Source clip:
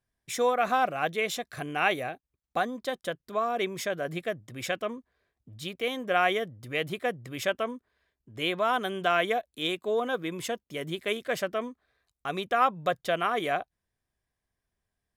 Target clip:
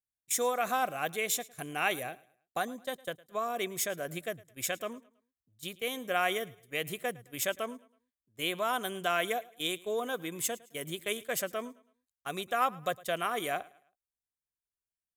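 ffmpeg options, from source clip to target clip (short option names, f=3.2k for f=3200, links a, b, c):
-af "agate=range=-17dB:threshold=-39dB:ratio=16:detection=peak,highshelf=f=9.7k:g=-5.5,aexciter=amount=2.6:drive=6.6:freq=6.8k,highshelf=f=4.5k:g=10,aecho=1:1:108|216|324:0.0794|0.0286|0.0103,volume=-5.5dB"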